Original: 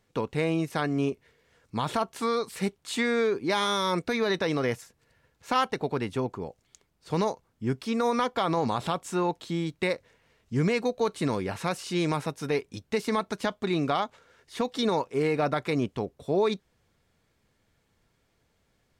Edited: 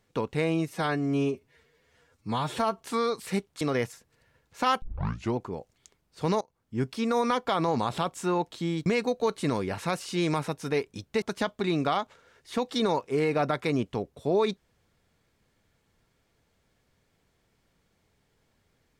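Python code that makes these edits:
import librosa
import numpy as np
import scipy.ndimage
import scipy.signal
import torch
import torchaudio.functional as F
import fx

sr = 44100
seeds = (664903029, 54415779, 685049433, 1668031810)

y = fx.edit(x, sr, fx.stretch_span(start_s=0.68, length_s=1.42, factor=1.5),
    fx.cut(start_s=2.9, length_s=1.6),
    fx.tape_start(start_s=5.71, length_s=0.54),
    fx.fade_in_from(start_s=7.3, length_s=0.42, floor_db=-23.5),
    fx.cut(start_s=9.75, length_s=0.89),
    fx.cut(start_s=13.0, length_s=0.25), tone=tone)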